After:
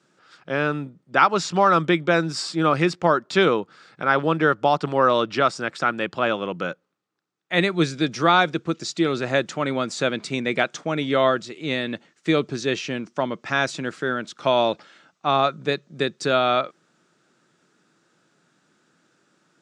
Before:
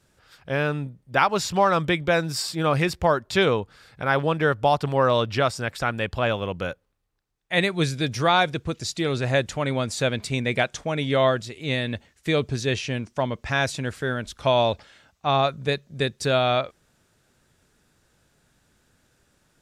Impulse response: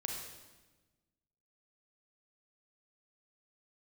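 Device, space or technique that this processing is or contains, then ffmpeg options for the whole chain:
television speaker: -af "highpass=f=160:w=0.5412,highpass=f=160:w=1.3066,equalizer=f=170:t=q:w=4:g=4,equalizer=f=330:t=q:w=4:g=7,equalizer=f=1300:t=q:w=4:g=7,lowpass=f=7800:w=0.5412,lowpass=f=7800:w=1.3066"

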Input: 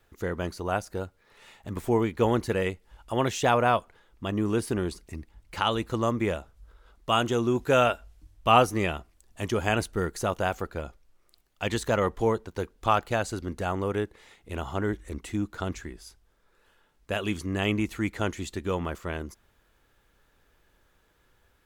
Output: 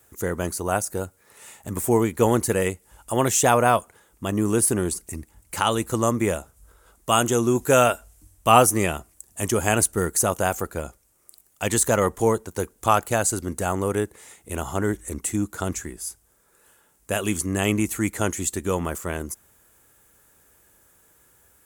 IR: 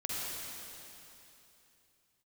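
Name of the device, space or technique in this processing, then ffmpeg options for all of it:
budget condenser microphone: -af "highpass=66,highshelf=f=5900:t=q:w=1.5:g=13.5,volume=1.68"

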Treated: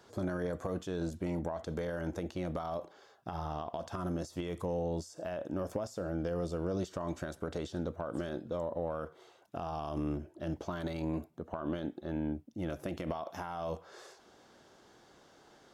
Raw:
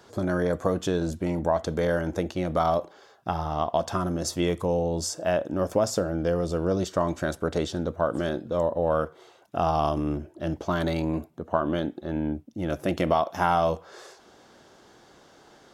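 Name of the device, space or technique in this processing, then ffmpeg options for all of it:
de-esser from a sidechain: -filter_complex "[0:a]asplit=2[s0][s1];[s1]highpass=f=6500:p=1,apad=whole_len=693864[s2];[s0][s2]sidechaincompress=threshold=0.00631:ratio=16:attack=4:release=69,volume=0.473"

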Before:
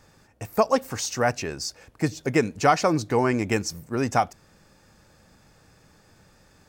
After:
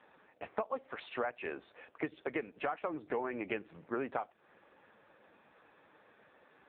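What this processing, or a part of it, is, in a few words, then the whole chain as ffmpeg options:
voicemail: -filter_complex "[0:a]asplit=3[s0][s1][s2];[s0]afade=t=out:st=0.79:d=0.02[s3];[s1]bass=f=250:g=-4,treble=f=4000:g=4,afade=t=in:st=0.79:d=0.02,afade=t=out:st=2.65:d=0.02[s4];[s2]afade=t=in:st=2.65:d=0.02[s5];[s3][s4][s5]amix=inputs=3:normalize=0,highpass=360,lowpass=3100,acompressor=threshold=0.0224:ratio=12,volume=1.19" -ar 8000 -c:a libopencore_amrnb -b:a 5900

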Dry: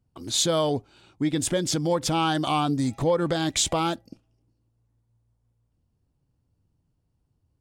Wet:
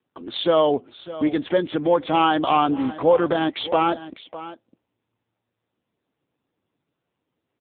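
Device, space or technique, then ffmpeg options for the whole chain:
satellite phone: -af "highpass=320,lowpass=3200,aecho=1:1:606:0.168,volume=2.37" -ar 8000 -c:a libopencore_amrnb -b:a 6700

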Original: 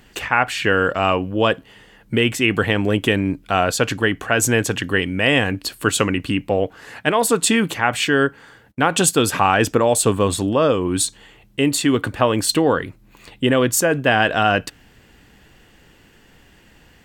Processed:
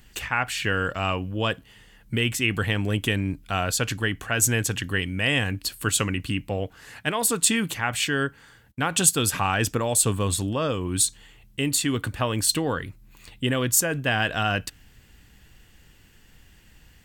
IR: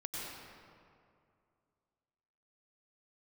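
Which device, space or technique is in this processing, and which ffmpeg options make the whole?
smiley-face EQ: -af "lowshelf=f=140:g=7.5,equalizer=f=460:t=o:w=2.8:g=-6.5,highshelf=f=6200:g=7,volume=0.562"

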